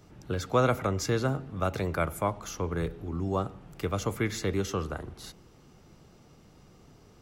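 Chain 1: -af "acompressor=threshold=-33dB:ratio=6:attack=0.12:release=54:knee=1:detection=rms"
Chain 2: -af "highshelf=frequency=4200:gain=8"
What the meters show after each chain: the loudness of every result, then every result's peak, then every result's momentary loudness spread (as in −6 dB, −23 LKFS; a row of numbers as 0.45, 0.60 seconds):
−40.5, −30.0 LKFS; −29.0, −9.5 dBFS; 18, 11 LU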